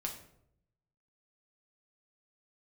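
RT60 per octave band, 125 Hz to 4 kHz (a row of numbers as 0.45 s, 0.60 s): 1.2 s, 0.90 s, 0.80 s, 0.65 s, 0.55 s, 0.45 s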